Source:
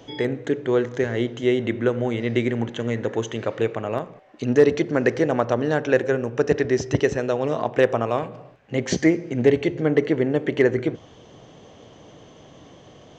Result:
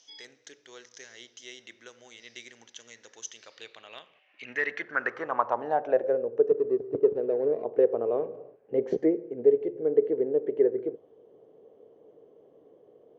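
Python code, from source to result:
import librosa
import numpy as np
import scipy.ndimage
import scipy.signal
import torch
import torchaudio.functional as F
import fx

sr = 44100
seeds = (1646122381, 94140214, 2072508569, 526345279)

y = fx.median_filter(x, sr, points=41, at=(6.49, 7.64))
y = fx.filter_sweep_bandpass(y, sr, from_hz=5500.0, to_hz=440.0, start_s=3.4, end_s=6.42, q=5.1)
y = fx.rider(y, sr, range_db=4, speed_s=0.5)
y = y * 10.0 ** (2.0 / 20.0)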